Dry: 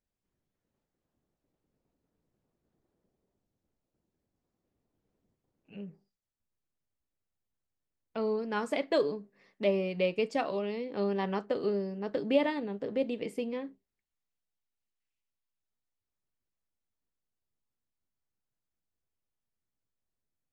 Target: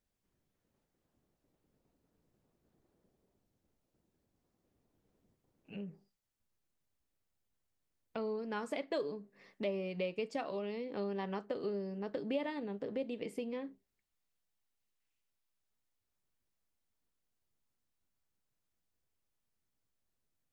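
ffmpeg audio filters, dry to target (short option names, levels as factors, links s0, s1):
-af "acompressor=threshold=0.00501:ratio=2,volume=1.41"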